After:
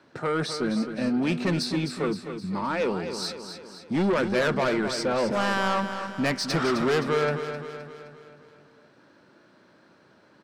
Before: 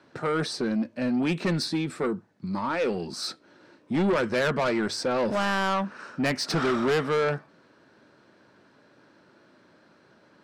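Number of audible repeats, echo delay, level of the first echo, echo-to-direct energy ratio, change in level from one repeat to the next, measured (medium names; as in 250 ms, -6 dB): 5, 260 ms, -9.0 dB, -7.5 dB, -5.5 dB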